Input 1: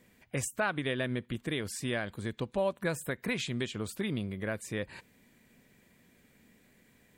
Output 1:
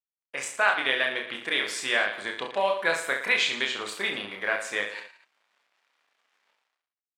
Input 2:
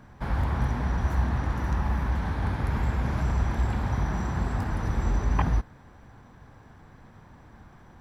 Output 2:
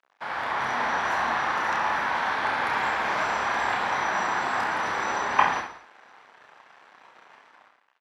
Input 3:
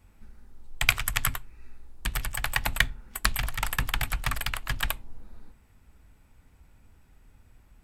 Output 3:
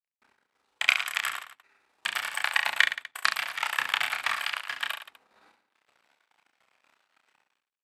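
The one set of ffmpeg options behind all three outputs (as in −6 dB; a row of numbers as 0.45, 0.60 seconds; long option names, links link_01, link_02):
-af "aemphasis=mode=production:type=75fm,dynaudnorm=framelen=120:gausssize=9:maxgain=6dB,aeval=exprs='sgn(val(0))*max(abs(val(0))-0.00596,0)':channel_layout=same,highpass=730,lowpass=2900,aecho=1:1:30|67.5|114.4|173|246.2:0.631|0.398|0.251|0.158|0.1,volume=5dB"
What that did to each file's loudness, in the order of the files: +8.0, +2.5, +1.5 LU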